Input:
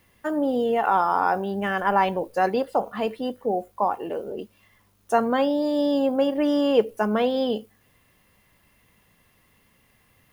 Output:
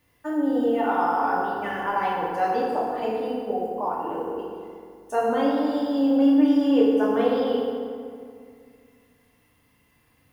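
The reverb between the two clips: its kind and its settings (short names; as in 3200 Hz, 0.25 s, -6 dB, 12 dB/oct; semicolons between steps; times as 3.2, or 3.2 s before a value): FDN reverb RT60 2.2 s, low-frequency decay 1.2×, high-frequency decay 0.6×, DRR -5.5 dB; gain -8.5 dB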